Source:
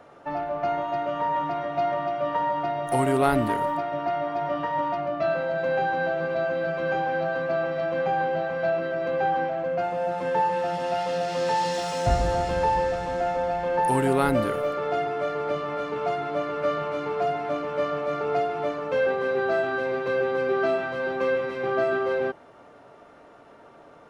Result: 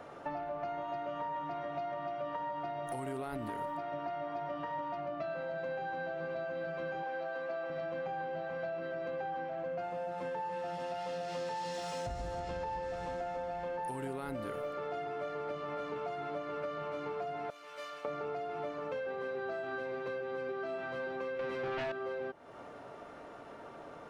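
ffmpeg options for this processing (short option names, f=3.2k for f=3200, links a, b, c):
-filter_complex "[0:a]asettb=1/sr,asplit=3[a][b][c];[a]atrim=end=7.034[d];[b]atrim=start=7.03:end=7.7,asetpts=PTS-STARTPTS,afade=t=in:d=0.004:c=qsin,afade=t=out:st=0.666:d=0.004:c=qsin,highpass=310[e];[c]atrim=start=7.696[f];[d][e]acrossfade=d=0.004:c1=hsin:c2=qsin[g];[g][f]acrossfade=d=0.004:c1=qsin:c2=hsin,asettb=1/sr,asplit=3[h][i][j];[h]atrim=end=12.404[k];[i]atrim=start=12.4:end=12.83,asetpts=PTS-STARTPTS,afade=t=in:d=0.004:c=qsin,afade=t=out:st=0.426:d=0.004:c=qsin,lowpass=7.5k[l];[j]atrim=start=12.826[m];[k][l]acrossfade=d=0.004:c1=hsin:c2=qsin[n];[n][m]acrossfade=d=0.004:c1=qsin:c2=hsin,asettb=1/sr,asplit=3[o][p][q];[o]atrim=end=17.504[r];[p]atrim=start=17.5:end=18.05,asetpts=PTS-STARTPTS,afade=t=in:d=0.004:c=qsin,afade=t=out:st=0.546:d=0.004:c=qsin,aderivative[s];[q]atrim=start=18.046[t];[r][s]acrossfade=d=0.004:c1=hsin:c2=qsin[u];[u][t]acrossfade=d=0.004:c1=qsin:c2=hsin,asettb=1/sr,asplit=3[v][w][x];[v]atrim=end=21.394[y];[w]atrim=start=21.39:end=21.92,asetpts=PTS-STARTPTS,afade=t=in:d=0.004:c=qsin,afade=t=out:st=0.526:d=0.004:c=qsin,aeval=exprs='0.2*sin(PI/2*2.51*val(0)/0.2)':c=same[z];[x]atrim=start=21.916[aa];[y][z]acrossfade=d=0.004:c1=hsin:c2=qsin[ab];[ab][aa]acrossfade=d=0.004:c1=qsin:c2=hsin,alimiter=limit=-17dB:level=0:latency=1:release=145,acompressor=threshold=-38dB:ratio=6,volume=1dB"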